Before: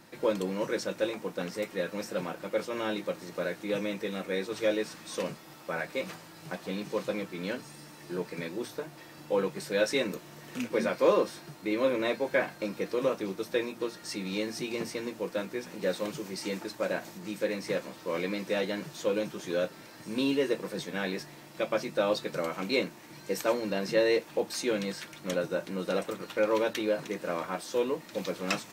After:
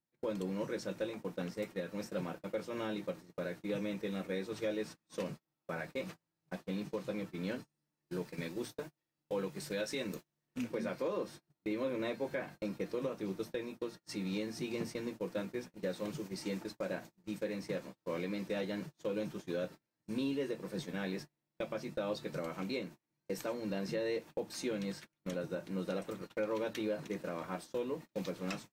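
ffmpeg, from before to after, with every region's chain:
-filter_complex "[0:a]asettb=1/sr,asplit=3[s0][s1][s2];[s0]atrim=end=8.074[s3];[s1]atrim=start=8.07:end=10.47,asetpts=PTS-STARTPTS,afade=t=in:d=0.004:c=qsin,afade=t=out:st=2.396:d=0.004:c=qsin,highshelf=f=2200:g=5.5,aeval=exprs='sgn(val(0))*max(abs(val(0))-0.00133,0)':c=same[s4];[s2]atrim=start=10.466[s5];[s3][s4]acrossfade=d=0.004:c1=hsin:c2=qsin[s6];[s6][s5]acrossfade=d=0.004:c1=qsin:c2=hsin,agate=range=0.0178:threshold=0.0112:ratio=16:detection=peak,lowshelf=f=240:g=10.5,alimiter=limit=0.106:level=0:latency=1:release=247,volume=0.422"

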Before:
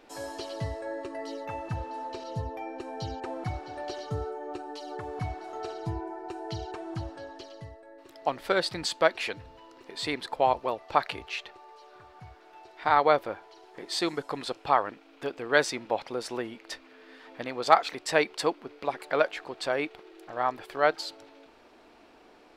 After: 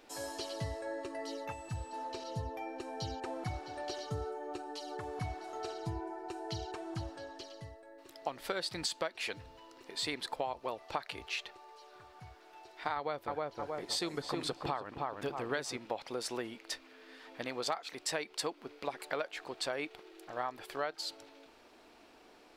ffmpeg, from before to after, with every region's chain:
-filter_complex "[0:a]asettb=1/sr,asplit=3[s0][s1][s2];[s0]atrim=end=1.524[s3];[s1]atrim=start=1.52:end=1.93,asetpts=PTS-STARTPTS,afade=t=in:d=0.004:c=qsin,afade=t=out:st=0.406:d=0.004:c=qsin,acrossover=split=150|3000[s4][s5][s6];[s5]acompressor=threshold=0.00562:ratio=2:attack=3.2:release=140:knee=2.83:detection=peak[s7];[s4][s7][s6]amix=inputs=3:normalize=0,aeval=exprs='val(0)+0.000891*sin(2*PI*7900*n/s)':c=same[s8];[s2]atrim=start=1.926[s9];[s3][s8]acrossfade=d=0.004:c1=hsin:c2=qsin[s10];[s10][s9]acrossfade=d=0.004:c1=qsin:c2=hsin,asettb=1/sr,asplit=3[s11][s12][s13];[s11]atrim=end=12.964[s14];[s12]atrim=start=12.96:end=15.77,asetpts=PTS-STARTPTS,afade=t=in:d=0.004:c=qsin,afade=t=out:st=2.806:d=0.004:c=qsin,equalizer=f=82:w=0.46:g=8.5,asplit=2[s15][s16];[s16]adelay=315,lowpass=f=1700:p=1,volume=0.596,asplit=2[s17][s18];[s18]adelay=315,lowpass=f=1700:p=1,volume=0.38,asplit=2[s19][s20];[s20]adelay=315,lowpass=f=1700:p=1,volume=0.38,asplit=2[s21][s22];[s22]adelay=315,lowpass=f=1700:p=1,volume=0.38,asplit=2[s23][s24];[s24]adelay=315,lowpass=f=1700:p=1,volume=0.38[s25];[s15][s17][s19][s21][s23][s25]amix=inputs=6:normalize=0,atrim=end_sample=123921[s26];[s13]atrim=start=15.766[s27];[s14][s26]acrossfade=d=0.004:c1=hsin:c2=qsin[s28];[s28][s27]acrossfade=d=0.004:c1=qsin:c2=hsin,highshelf=f=3800:g=8,acompressor=threshold=0.0447:ratio=16,volume=0.596"

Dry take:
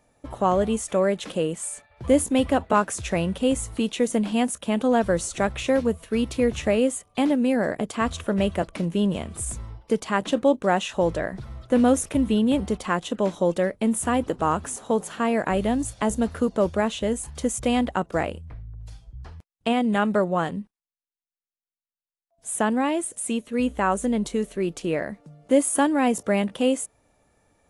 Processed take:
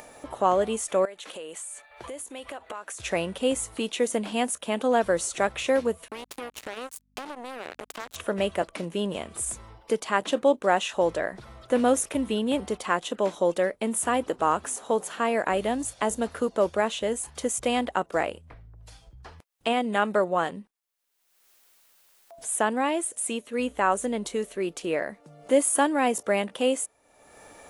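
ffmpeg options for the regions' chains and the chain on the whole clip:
-filter_complex "[0:a]asettb=1/sr,asplit=3[s0][s1][s2];[s0]atrim=end=1.054[s3];[s1]atrim=start=1.05:end=3,asetpts=PTS-STARTPTS,afade=t=in:d=0.004:c=qsin,afade=t=out:st=1.946:d=0.004:c=qsin,equalizer=f=140:w=0.45:g=-13,bandreject=f=5100:w=12,acompressor=threshold=0.0126:ratio=4:attack=3.2:release=140:knee=1:detection=peak[s4];[s2]atrim=start=2.996[s5];[s3][s4]acrossfade=d=0.004:c1=hsin:c2=qsin[s6];[s6][s5]acrossfade=d=0.004:c1=qsin:c2=hsin,asettb=1/sr,asplit=3[s7][s8][s9];[s7]atrim=end=6.084[s10];[s8]atrim=start=6.08:end=8.16,asetpts=PTS-STARTPTS,afade=t=in:d=0.004:c=qsin,afade=t=out:st=2.076:d=0.004:c=qsin,acompressor=threshold=0.0224:ratio=5:attack=3.2:release=140:knee=1:detection=peak,acrusher=bits=4:mix=0:aa=0.5,aeval=exprs='val(0)+0.000891*(sin(2*PI*50*n/s)+sin(2*PI*2*50*n/s)/2+sin(2*PI*3*50*n/s)/3+sin(2*PI*4*50*n/s)/4+sin(2*PI*5*50*n/s)/5)':c=same[s11];[s9]atrim=start=8.156[s12];[s10][s11]acrossfade=d=0.004:c1=hsin:c2=qsin[s13];[s13][s12]acrossfade=d=0.004:c1=qsin:c2=hsin,highshelf=f=6100:g=6.5,acompressor=mode=upward:threshold=0.0316:ratio=2.5,bass=f=250:g=-13,treble=f=4000:g=-4"

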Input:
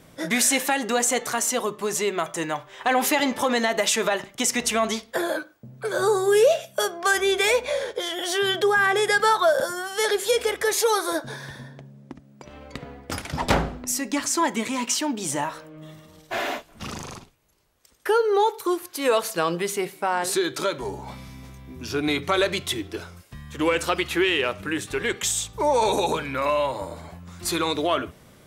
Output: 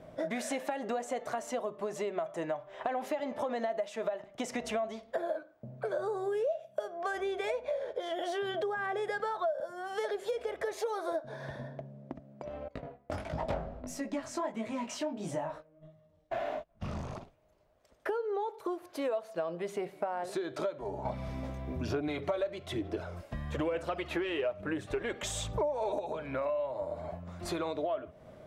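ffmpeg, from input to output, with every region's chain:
-filter_complex "[0:a]asettb=1/sr,asplit=3[s0][s1][s2];[s0]atrim=end=12.684[s3];[s1]atrim=start=12.68:end=17.14,asetpts=PTS-STARTPTS,afade=t=in:d=0.004:c=qsin,afade=t=out:st=4.456:d=0.004:c=qsin,agate=range=0.141:threshold=0.01:ratio=16:release=100:detection=peak,asubboost=boost=3:cutoff=200,flanger=delay=17.5:depth=6:speed=1.5[s4];[s2]atrim=start=17.136[s5];[s3][s4]acrossfade=d=0.004:c1=hsin:c2=qsin[s6];[s6][s5]acrossfade=d=0.004:c1=qsin:c2=hsin,asettb=1/sr,asplit=3[s7][s8][s9];[s7]atrim=end=21.054[s10];[s8]atrim=start=21.05:end=25.99,asetpts=PTS-STARTPTS,afade=t=in:d=0.004:c=qsin,afade=t=out:st=4.936:d=0.004:c=qsin,acontrast=73,aphaser=in_gain=1:out_gain=1:delay=3.7:decay=0.35:speed=1.1:type=sinusoidal[s11];[s9]atrim=start=25.986[s12];[s10][s11]acrossfade=d=0.004:c1=hsin:c2=qsin[s13];[s13][s12]acrossfade=d=0.004:c1=qsin:c2=hsin,lowpass=f=1400:p=1,equalizer=f=630:t=o:w=0.42:g=14,acompressor=threshold=0.0355:ratio=6,volume=0.708"

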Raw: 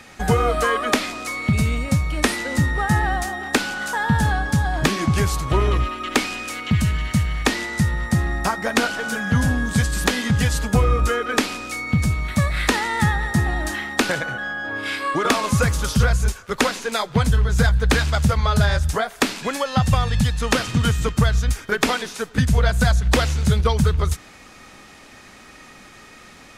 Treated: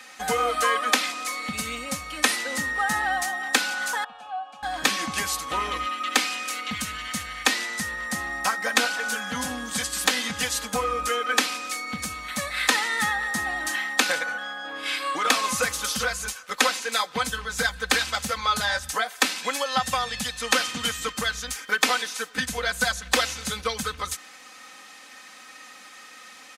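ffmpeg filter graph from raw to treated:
-filter_complex "[0:a]asettb=1/sr,asplit=3[s0][s1][s2];[s0]atrim=end=4.044[s3];[s1]atrim=start=4.04:end=4.63,asetpts=PTS-STARTPTS,afade=t=in:d=0.004:c=qsin,afade=t=out:st=0.586:d=0.004:c=qsin,asplit=3[s4][s5][s6];[s4]bandpass=f=730:t=q:w=8,volume=1[s7];[s5]bandpass=f=1090:t=q:w=8,volume=0.501[s8];[s6]bandpass=f=2440:t=q:w=8,volume=0.355[s9];[s7][s8][s9]amix=inputs=3:normalize=0,aeval=exprs='val(0)+0.00126*sin(2*PI*2900*n/s)':c=same,equalizer=f=360:t=o:w=0.43:g=-5[s10];[s2]atrim=start=4.626[s11];[s3][s10]acrossfade=d=0.004:c1=hsin:c2=qsin[s12];[s12][s11]acrossfade=d=0.004:c1=qsin:c2=hsin,highpass=f=1300:p=1,aecho=1:1:3.9:0.73"

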